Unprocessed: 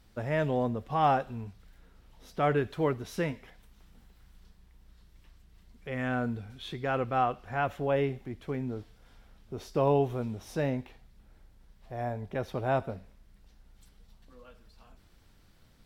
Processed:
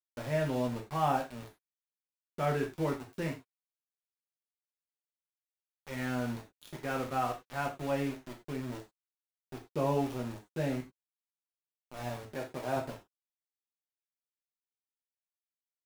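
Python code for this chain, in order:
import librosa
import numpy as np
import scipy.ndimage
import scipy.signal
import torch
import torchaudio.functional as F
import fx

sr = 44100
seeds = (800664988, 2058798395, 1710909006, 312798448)

y = np.where(np.abs(x) >= 10.0 ** (-35.0 / 20.0), x, 0.0)
y = fx.low_shelf(y, sr, hz=120.0, db=-10.5, at=(12.3, 12.76))
y = fx.rev_gated(y, sr, seeds[0], gate_ms=120, shape='falling', drr_db=1.0)
y = y * librosa.db_to_amplitude(-6.5)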